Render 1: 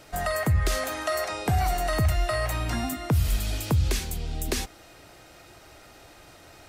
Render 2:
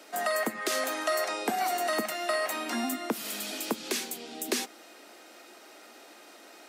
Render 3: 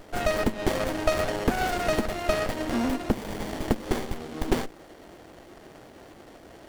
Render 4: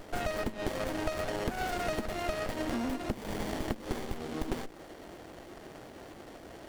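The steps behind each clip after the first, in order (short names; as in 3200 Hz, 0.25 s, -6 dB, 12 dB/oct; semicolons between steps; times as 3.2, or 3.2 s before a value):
Chebyshev high-pass 220 Hz, order 5
running maximum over 33 samples; gain +7 dB
compressor 6:1, threshold -30 dBFS, peak gain reduction 12.5 dB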